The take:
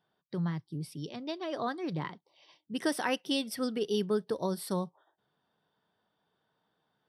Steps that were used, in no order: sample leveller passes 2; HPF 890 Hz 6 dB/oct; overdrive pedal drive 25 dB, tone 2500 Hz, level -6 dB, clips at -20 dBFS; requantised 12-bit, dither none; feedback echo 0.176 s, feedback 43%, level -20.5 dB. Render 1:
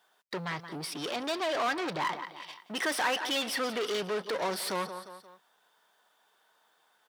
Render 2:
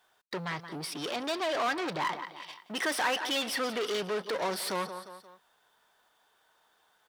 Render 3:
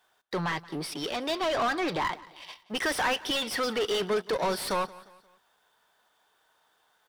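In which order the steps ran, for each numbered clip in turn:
sample leveller > feedback echo > overdrive pedal > requantised > HPF; sample leveller > feedback echo > overdrive pedal > HPF > requantised; HPF > sample leveller > overdrive pedal > requantised > feedback echo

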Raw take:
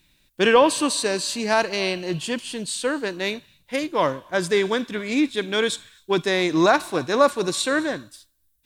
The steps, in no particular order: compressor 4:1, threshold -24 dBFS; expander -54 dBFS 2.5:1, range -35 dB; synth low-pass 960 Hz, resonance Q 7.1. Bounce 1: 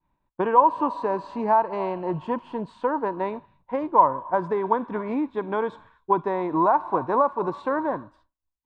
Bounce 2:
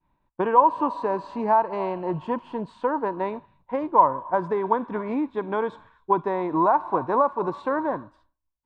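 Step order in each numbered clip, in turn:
compressor > synth low-pass > expander; expander > compressor > synth low-pass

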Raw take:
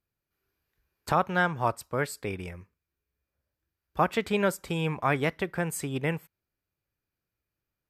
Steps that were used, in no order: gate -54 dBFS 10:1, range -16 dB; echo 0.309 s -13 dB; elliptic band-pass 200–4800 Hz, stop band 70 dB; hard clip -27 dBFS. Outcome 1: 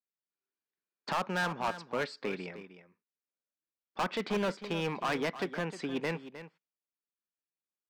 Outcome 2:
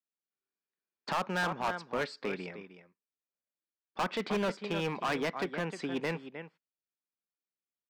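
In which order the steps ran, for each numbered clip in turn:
gate > elliptic band-pass > hard clip > echo; echo > gate > elliptic band-pass > hard clip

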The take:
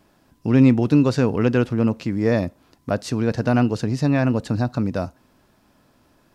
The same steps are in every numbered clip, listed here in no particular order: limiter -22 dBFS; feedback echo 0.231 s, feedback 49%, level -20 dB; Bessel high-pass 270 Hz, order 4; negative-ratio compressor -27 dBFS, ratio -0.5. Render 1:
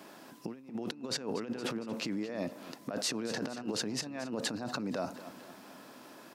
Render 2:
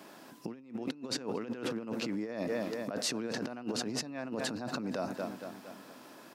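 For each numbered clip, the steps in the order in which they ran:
negative-ratio compressor > feedback echo > limiter > Bessel high-pass; feedback echo > negative-ratio compressor > limiter > Bessel high-pass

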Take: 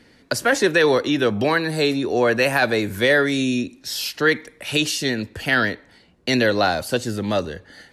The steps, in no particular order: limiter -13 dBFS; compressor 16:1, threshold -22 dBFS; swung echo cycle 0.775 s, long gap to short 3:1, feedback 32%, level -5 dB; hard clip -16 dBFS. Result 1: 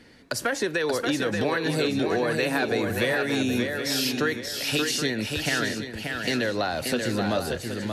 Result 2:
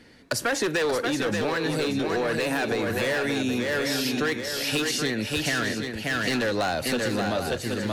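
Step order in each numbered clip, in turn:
compressor > limiter > hard clip > swung echo; hard clip > swung echo > limiter > compressor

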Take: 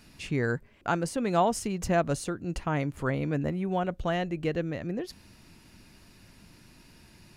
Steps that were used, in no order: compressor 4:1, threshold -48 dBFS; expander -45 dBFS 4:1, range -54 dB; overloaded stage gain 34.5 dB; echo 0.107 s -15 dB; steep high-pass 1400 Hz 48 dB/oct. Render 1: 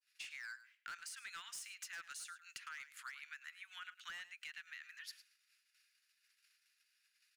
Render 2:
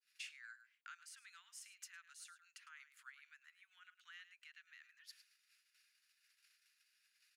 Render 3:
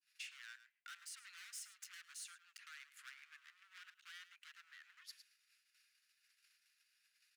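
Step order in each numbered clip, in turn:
expander > steep high-pass > overloaded stage > compressor > echo; echo > expander > compressor > steep high-pass > overloaded stage; overloaded stage > expander > echo > compressor > steep high-pass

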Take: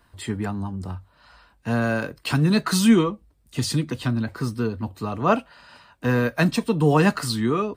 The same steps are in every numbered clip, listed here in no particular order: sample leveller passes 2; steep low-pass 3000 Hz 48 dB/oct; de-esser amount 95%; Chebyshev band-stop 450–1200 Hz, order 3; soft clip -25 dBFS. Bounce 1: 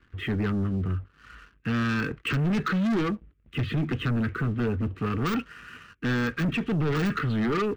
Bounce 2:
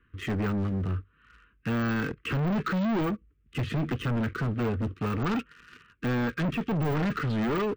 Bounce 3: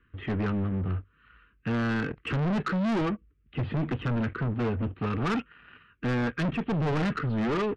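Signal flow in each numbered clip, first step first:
steep low-pass > soft clip > de-esser > Chebyshev band-stop > sample leveller; steep low-pass > sample leveller > de-esser > Chebyshev band-stop > soft clip; Chebyshev band-stop > sample leveller > de-esser > steep low-pass > soft clip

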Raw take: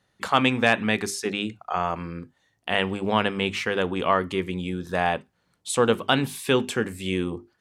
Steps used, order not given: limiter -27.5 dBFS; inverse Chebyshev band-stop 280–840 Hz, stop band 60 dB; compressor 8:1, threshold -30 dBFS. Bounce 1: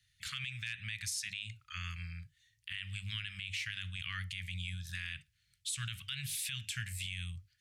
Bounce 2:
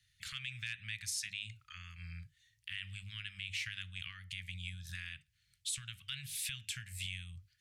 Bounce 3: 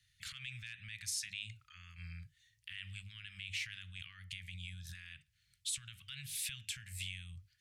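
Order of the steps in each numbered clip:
inverse Chebyshev band-stop > compressor > limiter; compressor > inverse Chebyshev band-stop > limiter; compressor > limiter > inverse Chebyshev band-stop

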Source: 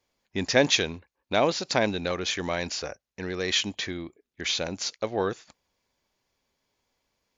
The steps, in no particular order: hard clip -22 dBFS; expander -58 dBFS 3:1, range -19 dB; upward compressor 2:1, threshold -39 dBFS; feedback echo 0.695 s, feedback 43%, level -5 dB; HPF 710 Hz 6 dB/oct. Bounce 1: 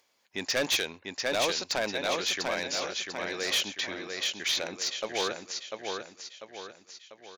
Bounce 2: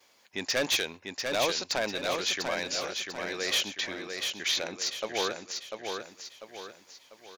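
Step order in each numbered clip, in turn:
expander > feedback echo > upward compressor > HPF > hard clip; upward compressor > expander > HPF > hard clip > feedback echo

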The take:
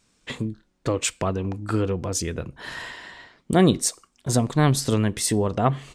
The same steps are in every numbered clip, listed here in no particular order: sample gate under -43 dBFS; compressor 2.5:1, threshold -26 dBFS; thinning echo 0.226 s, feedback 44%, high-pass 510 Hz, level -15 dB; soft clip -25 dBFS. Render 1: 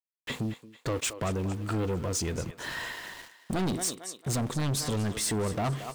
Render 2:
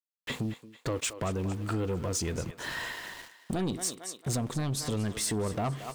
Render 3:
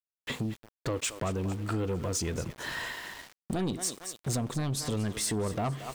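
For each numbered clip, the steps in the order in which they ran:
sample gate > thinning echo > soft clip > compressor; sample gate > thinning echo > compressor > soft clip; thinning echo > sample gate > compressor > soft clip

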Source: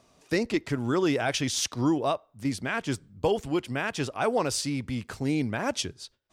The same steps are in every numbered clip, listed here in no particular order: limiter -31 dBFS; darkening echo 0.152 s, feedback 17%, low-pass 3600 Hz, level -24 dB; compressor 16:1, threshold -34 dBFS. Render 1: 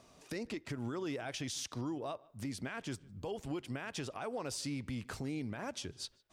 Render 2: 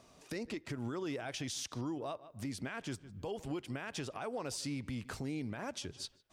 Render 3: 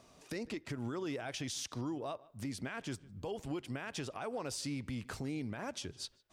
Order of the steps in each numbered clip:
compressor > limiter > darkening echo; darkening echo > compressor > limiter; compressor > darkening echo > limiter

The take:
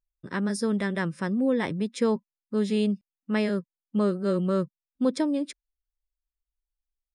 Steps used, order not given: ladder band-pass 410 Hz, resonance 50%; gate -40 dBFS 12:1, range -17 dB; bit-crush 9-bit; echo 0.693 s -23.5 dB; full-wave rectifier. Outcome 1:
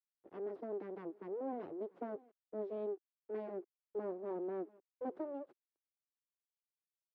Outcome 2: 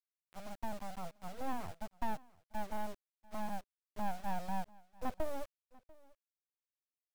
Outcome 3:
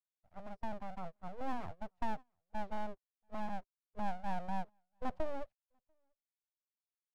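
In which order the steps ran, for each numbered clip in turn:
full-wave rectifier > echo > gate > bit-crush > ladder band-pass; ladder band-pass > gate > bit-crush > echo > full-wave rectifier; bit-crush > ladder band-pass > full-wave rectifier > echo > gate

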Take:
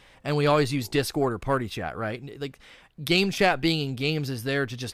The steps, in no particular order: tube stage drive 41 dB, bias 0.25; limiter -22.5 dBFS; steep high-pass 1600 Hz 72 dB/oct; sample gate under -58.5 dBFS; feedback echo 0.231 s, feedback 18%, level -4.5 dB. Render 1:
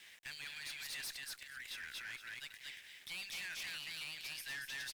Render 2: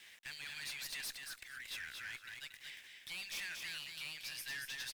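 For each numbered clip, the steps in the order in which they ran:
feedback echo > limiter > steep high-pass > sample gate > tube stage; limiter > steep high-pass > sample gate > tube stage > feedback echo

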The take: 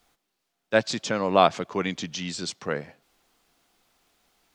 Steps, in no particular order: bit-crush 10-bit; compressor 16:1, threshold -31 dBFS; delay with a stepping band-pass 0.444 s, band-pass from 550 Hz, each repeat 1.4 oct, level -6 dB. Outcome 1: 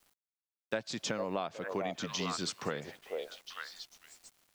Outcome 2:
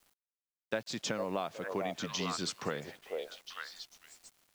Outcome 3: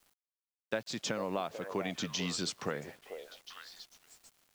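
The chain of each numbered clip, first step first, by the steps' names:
delay with a stepping band-pass > bit-crush > compressor; delay with a stepping band-pass > compressor > bit-crush; compressor > delay with a stepping band-pass > bit-crush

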